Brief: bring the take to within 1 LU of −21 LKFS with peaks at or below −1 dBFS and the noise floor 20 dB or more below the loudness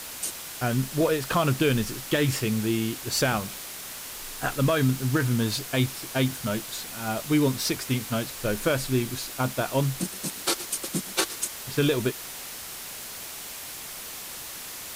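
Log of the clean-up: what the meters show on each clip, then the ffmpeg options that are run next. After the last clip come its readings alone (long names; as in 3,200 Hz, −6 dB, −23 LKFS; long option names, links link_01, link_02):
background noise floor −39 dBFS; target noise floor −48 dBFS; integrated loudness −27.5 LKFS; sample peak −10.0 dBFS; target loudness −21.0 LKFS
→ -af "afftdn=noise_reduction=9:noise_floor=-39"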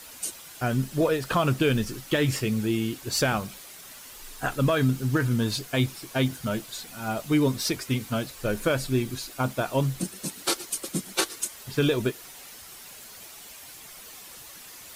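background noise floor −45 dBFS; target noise floor −47 dBFS
→ -af "afftdn=noise_reduction=6:noise_floor=-45"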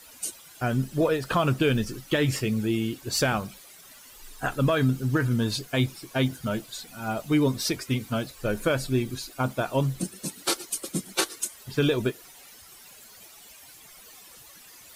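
background noise floor −50 dBFS; integrated loudness −27.0 LKFS; sample peak −10.5 dBFS; target loudness −21.0 LKFS
→ -af "volume=6dB"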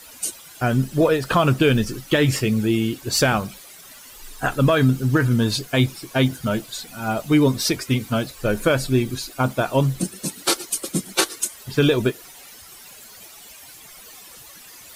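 integrated loudness −21.0 LKFS; sample peak −4.5 dBFS; background noise floor −44 dBFS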